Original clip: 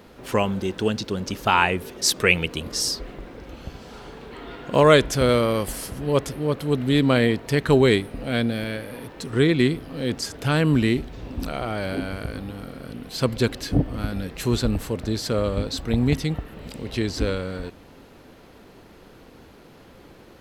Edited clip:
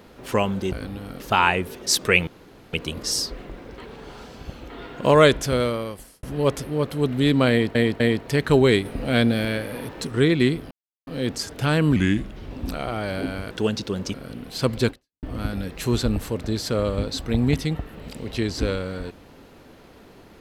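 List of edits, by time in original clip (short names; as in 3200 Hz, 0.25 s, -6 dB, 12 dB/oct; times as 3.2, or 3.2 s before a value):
0.72–1.35 swap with 12.25–12.73
2.42 insert room tone 0.46 s
3.47–4.39 reverse
5–5.92 fade out
7.19–7.44 loop, 3 plays
8.04–9.26 gain +4 dB
9.9 insert silence 0.36 s
10.79–11.25 speed 84%
13.49–13.82 fade out exponential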